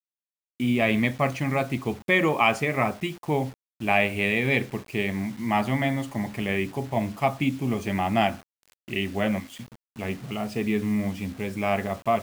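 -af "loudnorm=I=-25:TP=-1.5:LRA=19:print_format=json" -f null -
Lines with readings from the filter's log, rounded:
"input_i" : "-26.3",
"input_tp" : "-5.9",
"input_lra" : "4.1",
"input_thresh" : "-36.6",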